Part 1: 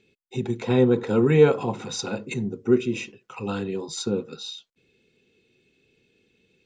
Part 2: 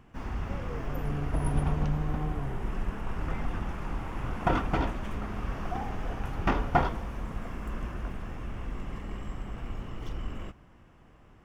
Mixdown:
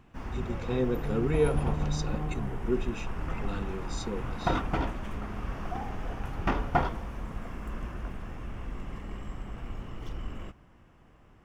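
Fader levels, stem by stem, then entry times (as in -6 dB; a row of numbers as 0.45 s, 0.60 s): -10.0 dB, -1.5 dB; 0.00 s, 0.00 s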